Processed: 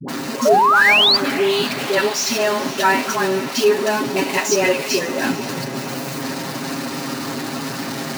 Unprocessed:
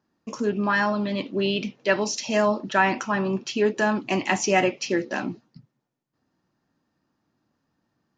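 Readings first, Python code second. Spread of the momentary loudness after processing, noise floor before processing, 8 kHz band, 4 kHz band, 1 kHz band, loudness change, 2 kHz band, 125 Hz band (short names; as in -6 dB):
14 LU, -77 dBFS, +10.0 dB, +15.0 dB, +8.5 dB, +6.5 dB, +8.5 dB, +3.0 dB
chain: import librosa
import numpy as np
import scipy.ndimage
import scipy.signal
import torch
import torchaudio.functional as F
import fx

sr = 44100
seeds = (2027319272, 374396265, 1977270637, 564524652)

y = x + 0.5 * 10.0 ** (-21.5 / 20.0) * np.sign(x)
y = scipy.signal.sosfilt(scipy.signal.cheby1(2, 1.0, 200.0, 'highpass', fs=sr, output='sos'), y)
y = fx.peak_eq(y, sr, hz=4300.0, db=3.0, octaves=0.35)
y = fx.notch(y, sr, hz=3300.0, q=16.0)
y = y + 0.87 * np.pad(y, (int(7.4 * sr / 1000.0), 0))[:len(y)]
y = fx.dispersion(y, sr, late='highs', ms=84.0, hz=490.0)
y = fx.spec_paint(y, sr, seeds[0], shape='rise', start_s=0.45, length_s=0.72, low_hz=560.0, high_hz=4900.0, level_db=-13.0)
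y = fx.echo_diffused(y, sr, ms=498, feedback_pct=66, wet_db=-14.5)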